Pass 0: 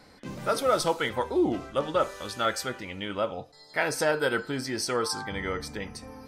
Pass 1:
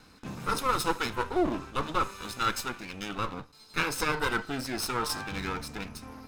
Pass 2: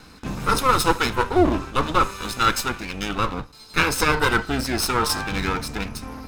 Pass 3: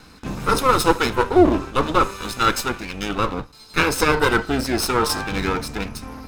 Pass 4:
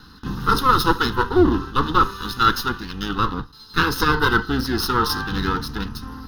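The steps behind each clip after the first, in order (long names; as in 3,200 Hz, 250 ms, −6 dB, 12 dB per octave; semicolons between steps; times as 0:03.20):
lower of the sound and its delayed copy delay 0.77 ms
sub-octave generator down 2 octaves, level −4 dB; level +9 dB
dynamic equaliser 420 Hz, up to +5 dB, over −33 dBFS, Q 0.87
phaser with its sweep stopped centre 2,300 Hz, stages 6; level +2.5 dB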